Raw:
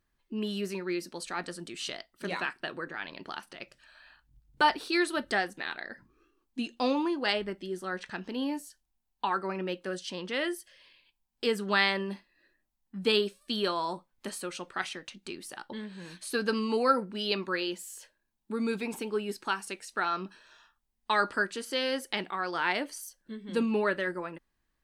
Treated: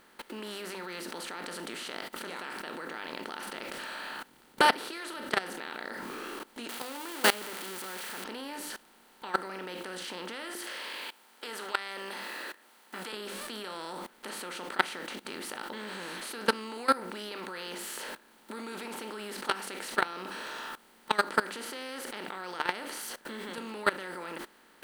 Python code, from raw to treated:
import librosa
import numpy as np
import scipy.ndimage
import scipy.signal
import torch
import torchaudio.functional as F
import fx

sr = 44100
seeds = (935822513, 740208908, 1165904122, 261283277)

y = fx.crossing_spikes(x, sr, level_db=-21.0, at=(6.69, 8.24))
y = fx.bessel_highpass(y, sr, hz=890.0, order=2, at=(10.55, 13.13))
y = fx.bin_compress(y, sr, power=0.4)
y = fx.hum_notches(y, sr, base_hz=50, count=7)
y = fx.level_steps(y, sr, step_db=20)